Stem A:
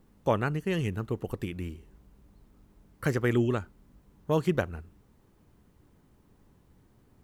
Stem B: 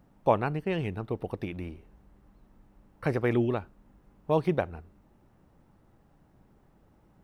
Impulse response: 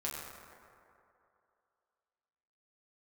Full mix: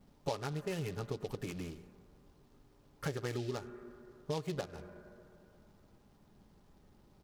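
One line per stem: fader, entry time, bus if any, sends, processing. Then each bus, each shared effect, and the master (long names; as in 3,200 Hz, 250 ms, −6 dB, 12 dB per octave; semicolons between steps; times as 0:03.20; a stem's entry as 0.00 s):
−9.5 dB, 0.00 s, send −12.5 dB, comb filter 4.9 ms, depth 72%
−4.0 dB, 7.5 ms, no send, short delay modulated by noise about 3,700 Hz, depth 0.068 ms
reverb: on, RT60 2.7 s, pre-delay 6 ms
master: downward compressor 4 to 1, threshold −35 dBFS, peak gain reduction 13.5 dB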